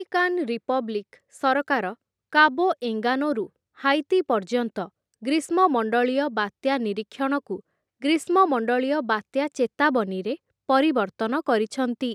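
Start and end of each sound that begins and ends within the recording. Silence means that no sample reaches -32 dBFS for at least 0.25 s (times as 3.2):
1.43–1.93
2.33–3.45
3.81–4.86
5.24–7.57
8.02–10.35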